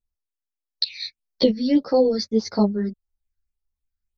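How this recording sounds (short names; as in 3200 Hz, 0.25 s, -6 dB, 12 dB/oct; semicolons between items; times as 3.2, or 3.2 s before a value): phasing stages 6, 1.7 Hz, lowest notch 750–2900 Hz; random-step tremolo 4 Hz; a shimmering, thickened sound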